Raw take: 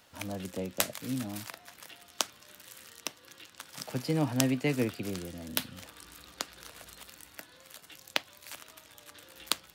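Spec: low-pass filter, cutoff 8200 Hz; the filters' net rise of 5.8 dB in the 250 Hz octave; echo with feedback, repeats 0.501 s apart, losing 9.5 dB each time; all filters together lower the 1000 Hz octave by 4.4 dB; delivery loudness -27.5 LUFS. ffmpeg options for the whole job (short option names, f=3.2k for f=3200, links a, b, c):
-af "lowpass=8.2k,equalizer=f=250:t=o:g=7,equalizer=f=1k:t=o:g=-6.5,aecho=1:1:501|1002|1503|2004:0.335|0.111|0.0365|0.012,volume=4dB"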